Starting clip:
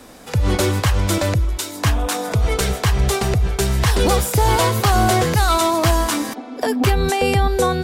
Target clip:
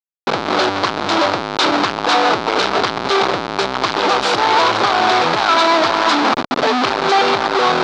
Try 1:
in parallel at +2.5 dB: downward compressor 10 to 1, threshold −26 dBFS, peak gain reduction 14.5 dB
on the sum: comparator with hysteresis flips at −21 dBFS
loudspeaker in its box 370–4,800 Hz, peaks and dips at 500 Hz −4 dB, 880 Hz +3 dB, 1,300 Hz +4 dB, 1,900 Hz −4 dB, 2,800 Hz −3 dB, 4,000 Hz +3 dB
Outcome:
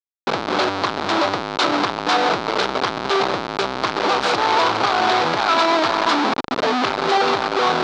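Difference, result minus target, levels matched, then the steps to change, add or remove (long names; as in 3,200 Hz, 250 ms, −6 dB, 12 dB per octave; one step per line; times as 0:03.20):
downward compressor: peak gain reduction +9.5 dB
change: downward compressor 10 to 1, threshold −15.5 dBFS, peak gain reduction 5 dB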